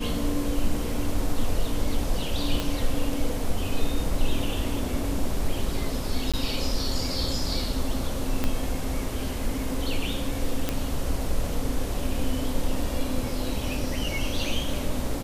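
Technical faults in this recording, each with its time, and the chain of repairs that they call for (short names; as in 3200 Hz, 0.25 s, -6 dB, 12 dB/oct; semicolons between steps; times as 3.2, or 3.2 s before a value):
2.6 pop
6.32–6.34 gap 16 ms
8.44 pop -11 dBFS
10.69 pop -10 dBFS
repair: de-click; interpolate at 6.32, 16 ms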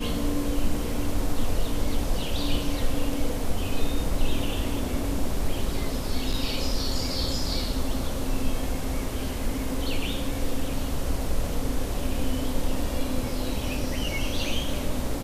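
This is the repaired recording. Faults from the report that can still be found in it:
2.6 pop
8.44 pop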